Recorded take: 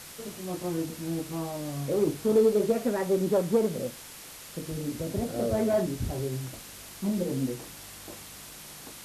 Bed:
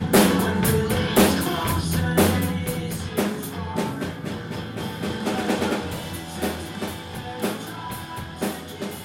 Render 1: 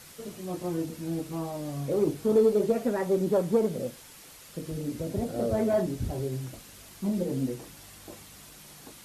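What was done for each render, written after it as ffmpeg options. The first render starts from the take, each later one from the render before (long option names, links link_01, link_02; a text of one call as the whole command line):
ffmpeg -i in.wav -af "afftdn=noise_reduction=6:noise_floor=-46" out.wav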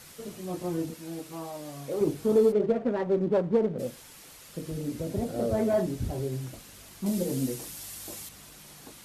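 ffmpeg -i in.wav -filter_complex "[0:a]asettb=1/sr,asplit=3[link_01][link_02][link_03];[link_01]atrim=end=0.944[link_04];[link_02]atrim=start=0.94:end=2.01,asetpts=PTS-STARTPTS,afade=type=in:duration=0.004:curve=qsin,afade=type=out:start_time=1.066:duration=0.004:curve=qsin,lowshelf=frequency=320:gain=-11.5[link_05];[link_03]atrim=start=2.006[link_06];[link_04][link_05]acrossfade=duration=0.004:curve1=hsin:curve2=qsin[link_07];[link_07][link_06]acrossfade=duration=0.004:curve1=qsin:curve2=hsin,asplit=3[link_08][link_09][link_10];[link_08]afade=type=out:start_time=2.51:duration=0.02[link_11];[link_09]adynamicsmooth=sensitivity=3:basefreq=990,afade=type=in:start_time=2.51:duration=0.02,afade=type=out:start_time=3.78:duration=0.02[link_12];[link_10]afade=type=in:start_time=3.78:duration=0.02[link_13];[link_11][link_12][link_13]amix=inputs=3:normalize=0,asettb=1/sr,asplit=3[link_14][link_15][link_16];[link_14]atrim=end=7.064[link_17];[link_15]atrim=start=7.06:end=8.29,asetpts=PTS-STARTPTS,afade=type=in:duration=0.004:curve=qsin,afade=type=out:start_time=1.226:duration=0.004:curve=qsin,highshelf=frequency=4000:gain=11.5[link_18];[link_16]atrim=start=8.286[link_19];[link_17][link_18]acrossfade=duration=0.004:curve1=hsin:curve2=qsin[link_20];[link_20][link_19]acrossfade=duration=0.004:curve1=qsin:curve2=hsin" out.wav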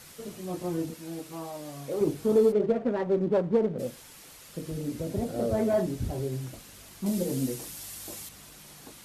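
ffmpeg -i in.wav -af anull out.wav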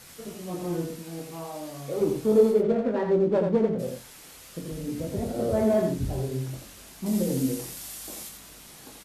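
ffmpeg -i in.wav -filter_complex "[0:a]asplit=2[link_01][link_02];[link_02]adelay=23,volume=-6.5dB[link_03];[link_01][link_03]amix=inputs=2:normalize=0,aecho=1:1:85:0.562" out.wav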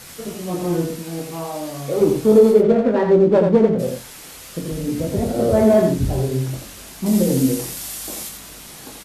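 ffmpeg -i in.wav -af "volume=9dB,alimiter=limit=-3dB:level=0:latency=1" out.wav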